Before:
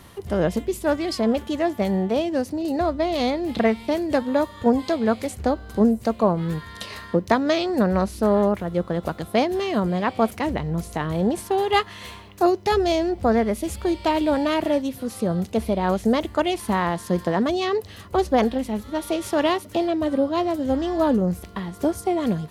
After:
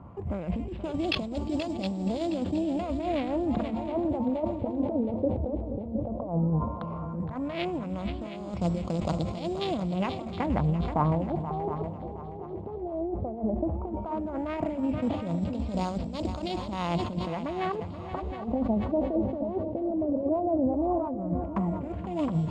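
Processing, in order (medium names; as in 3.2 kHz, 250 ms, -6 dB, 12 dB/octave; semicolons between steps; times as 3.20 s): local Wiener filter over 25 samples; high-pass 53 Hz; peaking EQ 9.8 kHz -12 dB 0.38 oct; band-stop 1.8 kHz, Q 10; compressor with a negative ratio -26 dBFS, ratio -0.5; fifteen-band graphic EQ 400 Hz -8 dB, 1.6 kHz -9 dB, 10 kHz +3 dB; sample-rate reducer 7.7 kHz, jitter 0%; LFO low-pass sine 0.14 Hz 490–4400 Hz; multi-head delay 239 ms, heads second and third, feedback 41%, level -12 dB; decay stretcher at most 62 dB/s; trim -1.5 dB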